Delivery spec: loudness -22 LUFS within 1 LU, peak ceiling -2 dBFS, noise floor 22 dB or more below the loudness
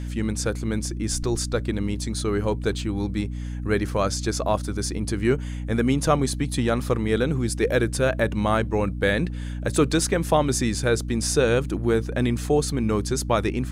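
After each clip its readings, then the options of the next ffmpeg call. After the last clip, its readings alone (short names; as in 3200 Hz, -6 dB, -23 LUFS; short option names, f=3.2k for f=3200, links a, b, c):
hum 60 Hz; harmonics up to 300 Hz; hum level -28 dBFS; loudness -24.0 LUFS; peak -7.0 dBFS; loudness target -22.0 LUFS
-> -af "bandreject=f=60:t=h:w=6,bandreject=f=120:t=h:w=6,bandreject=f=180:t=h:w=6,bandreject=f=240:t=h:w=6,bandreject=f=300:t=h:w=6"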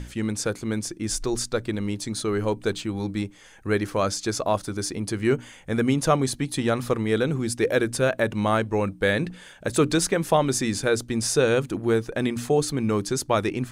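hum none; loudness -25.0 LUFS; peak -7.5 dBFS; loudness target -22.0 LUFS
-> -af "volume=3dB"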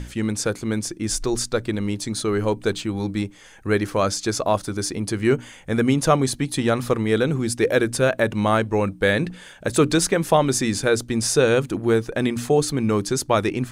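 loudness -22.0 LUFS; peak -4.5 dBFS; noise floor -45 dBFS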